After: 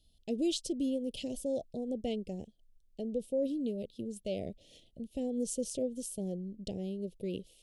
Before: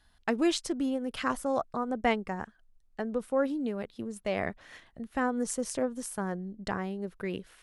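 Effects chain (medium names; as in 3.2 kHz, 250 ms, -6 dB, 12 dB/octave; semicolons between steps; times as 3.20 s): in parallel at +2 dB: peak limiter -23 dBFS, peak gain reduction 9.5 dB; on the sum: Chebyshev band-stop 570–3000 Hz, order 3; trim -8.5 dB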